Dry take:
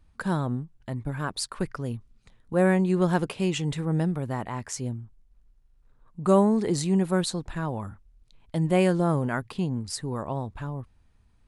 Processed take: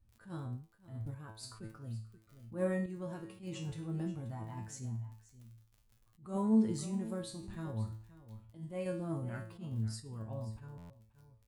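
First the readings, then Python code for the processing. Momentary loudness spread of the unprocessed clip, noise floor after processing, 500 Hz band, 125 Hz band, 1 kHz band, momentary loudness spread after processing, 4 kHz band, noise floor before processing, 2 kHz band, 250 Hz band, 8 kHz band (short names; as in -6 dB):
13 LU, -69 dBFS, -15.0 dB, -11.5 dB, -18.0 dB, 18 LU, -16.5 dB, -62 dBFS, -17.5 dB, -11.0 dB, -14.0 dB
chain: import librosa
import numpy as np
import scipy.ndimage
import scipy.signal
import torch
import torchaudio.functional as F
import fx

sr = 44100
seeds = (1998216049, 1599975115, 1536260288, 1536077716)

y = fx.spec_quant(x, sr, step_db=15)
y = y + 10.0 ** (-16.0 / 20.0) * np.pad(y, (int(531 * sr / 1000.0), 0))[:len(y)]
y = fx.dmg_crackle(y, sr, seeds[0], per_s=23.0, level_db=-36.0)
y = fx.spec_repair(y, sr, seeds[1], start_s=2.04, length_s=0.27, low_hz=480.0, high_hz=1100.0, source='both')
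y = fx.high_shelf(y, sr, hz=8000.0, db=7.0)
y = fx.comb_fb(y, sr, f0_hz=110.0, decay_s=0.44, harmonics='all', damping=0.0, mix_pct=90)
y = fx.tremolo_random(y, sr, seeds[2], hz=3.5, depth_pct=55)
y = fx.peak_eq(y, sr, hz=78.0, db=14.0, octaves=2.8)
y = fx.buffer_glitch(y, sr, at_s=(10.77,), block=512, repeats=10)
y = fx.attack_slew(y, sr, db_per_s=170.0)
y = y * librosa.db_to_amplitude(-4.5)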